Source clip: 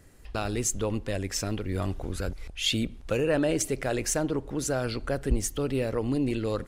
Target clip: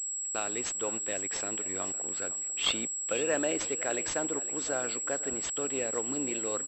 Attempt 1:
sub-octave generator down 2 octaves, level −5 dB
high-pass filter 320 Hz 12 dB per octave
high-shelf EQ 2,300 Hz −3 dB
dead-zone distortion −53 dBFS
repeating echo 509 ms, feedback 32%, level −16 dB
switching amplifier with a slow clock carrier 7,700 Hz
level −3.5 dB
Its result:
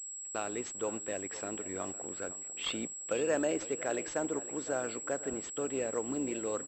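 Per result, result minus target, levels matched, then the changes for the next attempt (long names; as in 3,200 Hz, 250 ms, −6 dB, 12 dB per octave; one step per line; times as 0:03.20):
4,000 Hz band −3.0 dB; dead-zone distortion: distortion −3 dB
change: high-shelf EQ 2,300 Hz +8.5 dB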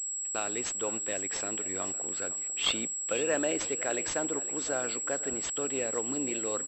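dead-zone distortion: distortion −6 dB
change: dead-zone distortion −46.5 dBFS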